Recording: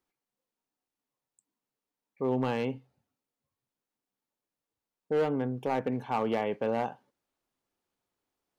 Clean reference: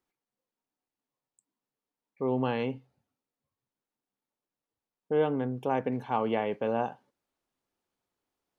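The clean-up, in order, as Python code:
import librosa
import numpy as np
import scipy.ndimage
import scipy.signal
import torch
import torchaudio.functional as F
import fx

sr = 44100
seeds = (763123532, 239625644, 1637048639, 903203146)

y = fx.fix_declip(x, sr, threshold_db=-21.5)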